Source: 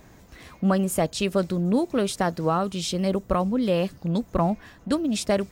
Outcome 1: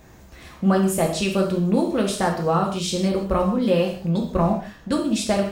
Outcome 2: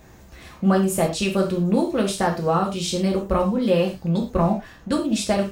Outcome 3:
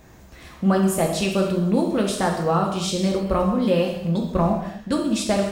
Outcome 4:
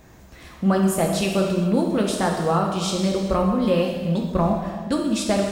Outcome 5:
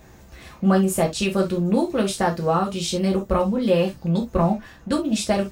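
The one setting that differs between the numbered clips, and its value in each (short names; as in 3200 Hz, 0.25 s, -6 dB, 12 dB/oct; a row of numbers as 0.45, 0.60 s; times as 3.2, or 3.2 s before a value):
non-linear reverb, gate: 210, 140, 320, 500, 90 ms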